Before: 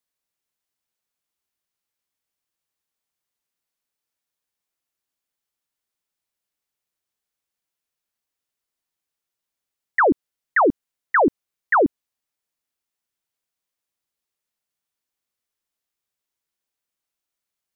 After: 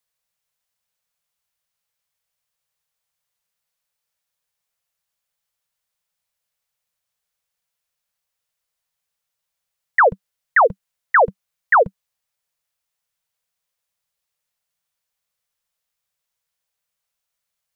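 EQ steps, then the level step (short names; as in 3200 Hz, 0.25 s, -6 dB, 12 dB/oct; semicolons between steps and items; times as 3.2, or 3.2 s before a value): elliptic band-stop 190–470 Hz; +4.5 dB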